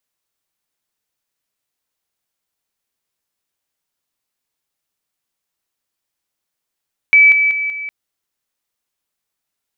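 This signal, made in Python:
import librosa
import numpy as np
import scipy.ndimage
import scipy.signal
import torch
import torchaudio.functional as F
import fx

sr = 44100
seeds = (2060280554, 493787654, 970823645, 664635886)

y = fx.level_ladder(sr, hz=2300.0, from_db=-5.0, step_db=-6.0, steps=4, dwell_s=0.19, gap_s=0.0)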